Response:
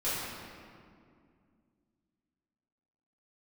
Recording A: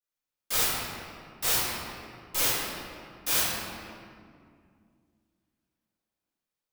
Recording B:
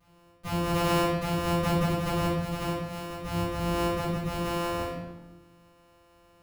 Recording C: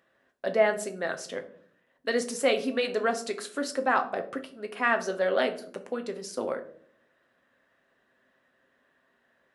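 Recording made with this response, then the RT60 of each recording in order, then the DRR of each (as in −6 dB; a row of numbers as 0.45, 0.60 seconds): A; 2.2, 1.2, 0.60 seconds; −13.0, −15.0, 5.5 decibels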